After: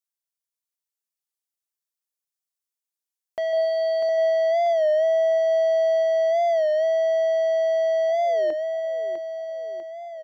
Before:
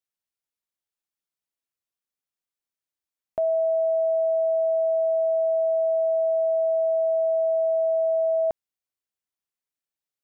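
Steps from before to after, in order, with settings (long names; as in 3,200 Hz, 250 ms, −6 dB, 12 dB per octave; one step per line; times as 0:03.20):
bass and treble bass −13 dB, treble +9 dB
mains-hum notches 60/120/180/240/300/360/420 Hz
leveller curve on the samples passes 2
0:03.49–0:04.09: flutter between parallel walls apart 6.9 metres, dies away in 0.76 s
0:08.08–0:08.54: sound drawn into the spectrogram fall 330–770 Hz −36 dBFS
repeating echo 646 ms, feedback 57%, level −6 dB
wow of a warped record 33 1/3 rpm, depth 100 cents
level −3 dB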